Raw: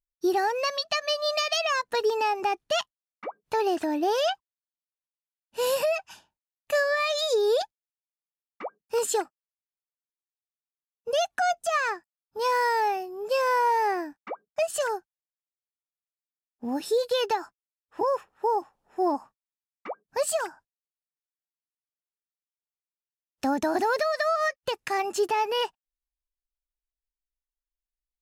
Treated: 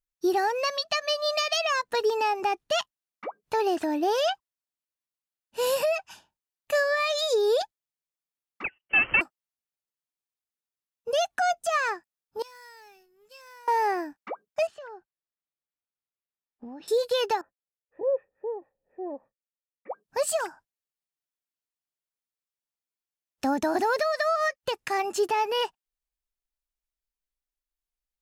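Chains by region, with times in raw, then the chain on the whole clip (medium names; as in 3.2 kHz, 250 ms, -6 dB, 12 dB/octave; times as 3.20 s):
8.64–9.21 s: square wave that keeps the level + frequency inversion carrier 3.1 kHz
12.42–13.68 s: companding laws mixed up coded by A + amplifier tone stack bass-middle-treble 6-0-2
14.67–16.88 s: compression 8:1, threshold -38 dBFS + distance through air 230 m
17.41–19.91 s: cascade formant filter e + bass shelf 350 Hz +11 dB
whole clip: none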